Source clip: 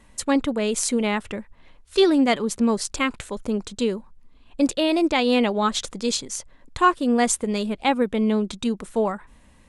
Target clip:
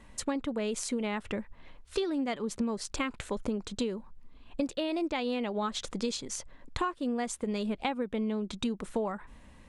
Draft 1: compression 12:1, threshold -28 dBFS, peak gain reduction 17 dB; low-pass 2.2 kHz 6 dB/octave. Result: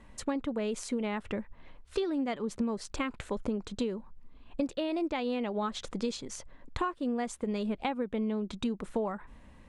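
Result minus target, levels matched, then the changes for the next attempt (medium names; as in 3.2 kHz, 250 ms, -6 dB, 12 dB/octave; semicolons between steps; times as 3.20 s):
4 kHz band -3.5 dB
change: low-pass 4.9 kHz 6 dB/octave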